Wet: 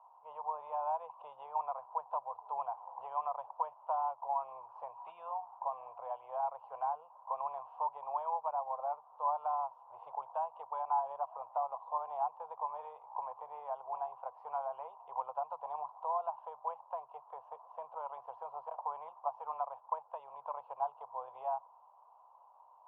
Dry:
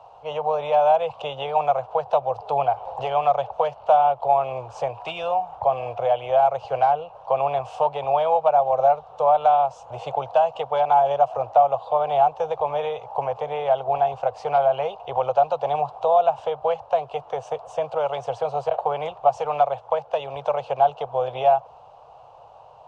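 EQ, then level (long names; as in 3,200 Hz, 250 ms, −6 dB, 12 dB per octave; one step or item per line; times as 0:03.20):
resonant band-pass 1,000 Hz, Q 9.1
high-frequency loss of the air 190 metres
−3.5 dB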